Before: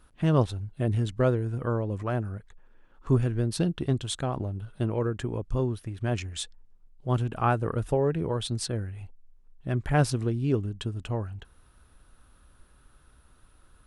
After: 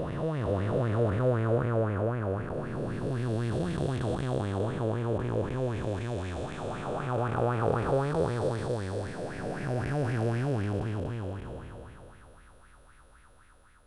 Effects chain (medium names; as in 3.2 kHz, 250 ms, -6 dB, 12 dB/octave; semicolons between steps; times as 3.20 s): spectral blur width 1250 ms; sweeping bell 3.9 Hz 500–2200 Hz +14 dB; trim +1.5 dB